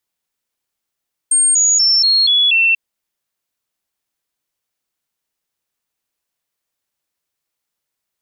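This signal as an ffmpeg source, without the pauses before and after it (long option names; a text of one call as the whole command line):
ffmpeg -f lavfi -i "aevalsrc='0.335*clip(min(mod(t,0.24),0.24-mod(t,0.24))/0.005,0,1)*sin(2*PI*8550*pow(2,-floor(t/0.24)/3)*mod(t,0.24))':duration=1.44:sample_rate=44100" out.wav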